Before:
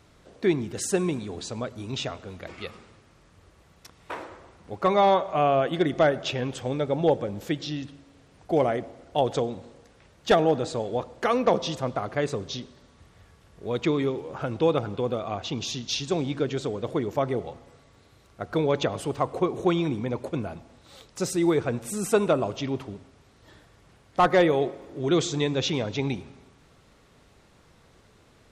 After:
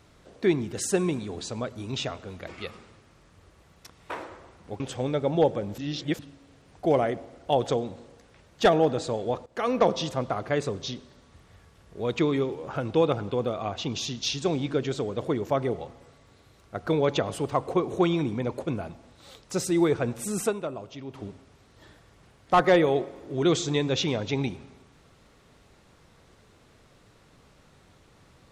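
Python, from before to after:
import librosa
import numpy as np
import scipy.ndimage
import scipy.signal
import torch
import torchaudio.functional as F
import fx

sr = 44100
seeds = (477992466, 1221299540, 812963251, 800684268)

y = fx.edit(x, sr, fx.cut(start_s=4.8, length_s=1.66),
    fx.reverse_span(start_s=7.44, length_s=0.41),
    fx.fade_in_from(start_s=11.12, length_s=0.31, floor_db=-17.5),
    fx.fade_down_up(start_s=22.12, length_s=0.73, db=-10.5, fade_s=0.34, curve='exp'), tone=tone)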